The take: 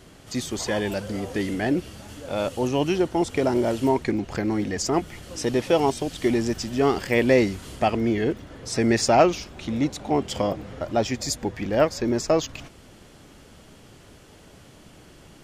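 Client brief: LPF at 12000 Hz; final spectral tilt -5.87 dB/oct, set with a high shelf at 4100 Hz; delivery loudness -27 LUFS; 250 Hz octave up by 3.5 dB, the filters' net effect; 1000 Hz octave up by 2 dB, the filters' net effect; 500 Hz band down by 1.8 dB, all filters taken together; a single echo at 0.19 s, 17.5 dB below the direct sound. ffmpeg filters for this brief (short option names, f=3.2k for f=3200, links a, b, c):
-af "lowpass=12k,equalizer=f=250:t=o:g=6,equalizer=f=500:t=o:g=-6,equalizer=f=1k:t=o:g=5.5,highshelf=f=4.1k:g=-4.5,aecho=1:1:190:0.133,volume=-4dB"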